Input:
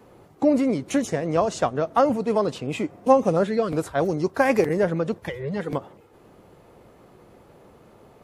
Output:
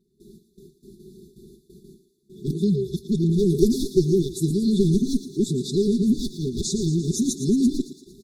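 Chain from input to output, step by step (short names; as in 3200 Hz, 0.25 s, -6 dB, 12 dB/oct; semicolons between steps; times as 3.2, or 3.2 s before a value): whole clip reversed; gate with hold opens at -41 dBFS; comb 5.1 ms, depth 91%; one-sided clip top -20 dBFS; brick-wall FIR band-stop 420–3400 Hz; thinning echo 0.114 s, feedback 61%, high-pass 470 Hz, level -10 dB; gain +4.5 dB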